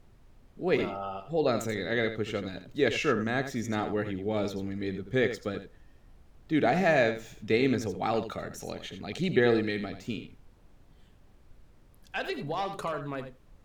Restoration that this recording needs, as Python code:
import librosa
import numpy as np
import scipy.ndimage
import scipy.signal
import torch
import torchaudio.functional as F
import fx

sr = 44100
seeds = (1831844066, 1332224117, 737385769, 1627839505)

y = fx.noise_reduce(x, sr, print_start_s=10.95, print_end_s=11.45, reduce_db=17.0)
y = fx.fix_echo_inverse(y, sr, delay_ms=83, level_db=-10.0)